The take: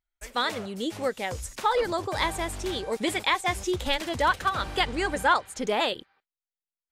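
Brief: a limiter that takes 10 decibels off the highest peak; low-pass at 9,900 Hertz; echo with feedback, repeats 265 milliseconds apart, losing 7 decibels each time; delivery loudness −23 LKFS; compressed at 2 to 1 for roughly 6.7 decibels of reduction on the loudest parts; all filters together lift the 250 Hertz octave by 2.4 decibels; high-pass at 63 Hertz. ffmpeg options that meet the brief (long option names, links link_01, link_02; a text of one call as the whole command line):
ffmpeg -i in.wav -af "highpass=63,lowpass=9900,equalizer=frequency=250:width_type=o:gain=3.5,acompressor=threshold=-30dB:ratio=2,alimiter=level_in=1dB:limit=-24dB:level=0:latency=1,volume=-1dB,aecho=1:1:265|530|795|1060|1325:0.447|0.201|0.0905|0.0407|0.0183,volume=11dB" out.wav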